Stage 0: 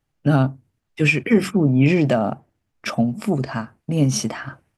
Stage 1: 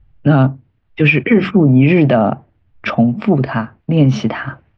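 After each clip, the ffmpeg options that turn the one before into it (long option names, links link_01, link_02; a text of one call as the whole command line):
ffmpeg -i in.wav -filter_complex "[0:a]lowpass=frequency=3400:width=0.5412,lowpass=frequency=3400:width=1.3066,acrossover=split=100[link_01][link_02];[link_01]acompressor=mode=upward:threshold=-40dB:ratio=2.5[link_03];[link_03][link_02]amix=inputs=2:normalize=0,alimiter=level_in=9dB:limit=-1dB:release=50:level=0:latency=1,volume=-1dB" out.wav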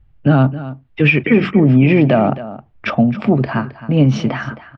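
ffmpeg -i in.wav -af "aecho=1:1:266:0.178,volume=-1dB" out.wav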